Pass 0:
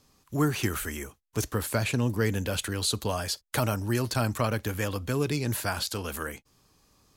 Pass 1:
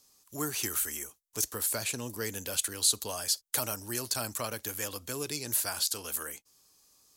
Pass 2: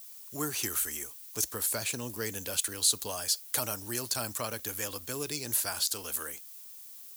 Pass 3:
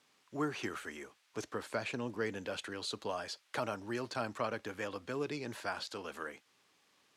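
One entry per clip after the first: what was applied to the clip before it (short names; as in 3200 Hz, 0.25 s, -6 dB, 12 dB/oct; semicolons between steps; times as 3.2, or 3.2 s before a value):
tone controls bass -9 dB, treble +14 dB; gain -7.5 dB
added noise violet -48 dBFS
BPF 150–2200 Hz; gain +1 dB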